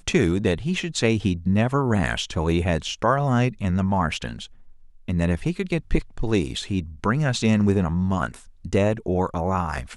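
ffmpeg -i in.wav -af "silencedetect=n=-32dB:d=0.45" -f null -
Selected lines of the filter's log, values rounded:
silence_start: 4.46
silence_end: 5.08 | silence_duration: 0.63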